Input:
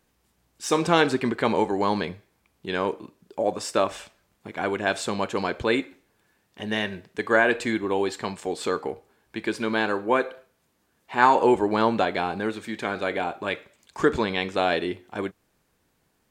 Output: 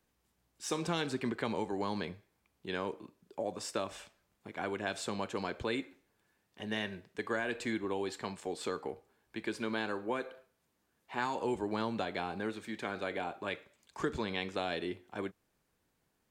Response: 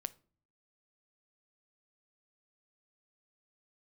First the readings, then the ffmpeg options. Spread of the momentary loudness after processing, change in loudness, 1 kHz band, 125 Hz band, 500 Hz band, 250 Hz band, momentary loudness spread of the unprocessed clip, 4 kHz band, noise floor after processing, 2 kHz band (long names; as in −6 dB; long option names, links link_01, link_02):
10 LU, −12.5 dB, −14.5 dB, −9.0 dB, −12.5 dB, −10.5 dB, 14 LU, −9.5 dB, −78 dBFS, −12.5 dB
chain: -filter_complex "[0:a]acrossover=split=230|3000[link_01][link_02][link_03];[link_02]acompressor=threshold=-24dB:ratio=6[link_04];[link_01][link_04][link_03]amix=inputs=3:normalize=0,volume=-8.5dB"